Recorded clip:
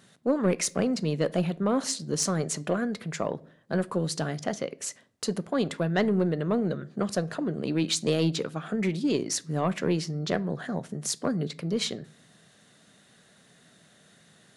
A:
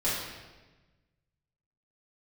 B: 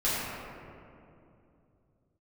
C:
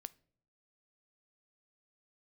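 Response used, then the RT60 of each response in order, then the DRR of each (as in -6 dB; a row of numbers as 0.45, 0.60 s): C; 1.2 s, 2.7 s, not exponential; -9.5, -10.5, 16.5 dB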